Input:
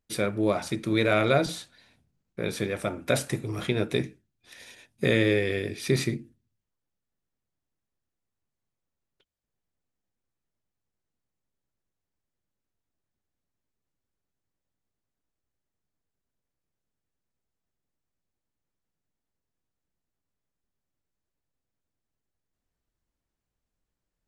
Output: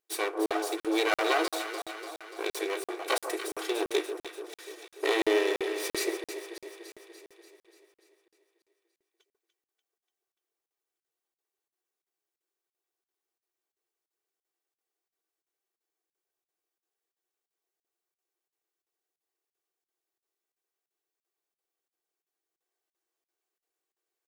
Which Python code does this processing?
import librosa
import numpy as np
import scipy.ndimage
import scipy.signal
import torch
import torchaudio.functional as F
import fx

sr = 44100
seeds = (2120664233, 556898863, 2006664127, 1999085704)

y = fx.lower_of_two(x, sr, delay_ms=2.6)
y = fx.brickwall_highpass(y, sr, low_hz=310.0)
y = fx.high_shelf(y, sr, hz=9500.0, db=5.0)
y = fx.echo_alternate(y, sr, ms=146, hz=1200.0, feedback_pct=77, wet_db=-7)
y = fx.buffer_crackle(y, sr, first_s=0.46, period_s=0.34, block=2048, kind='zero')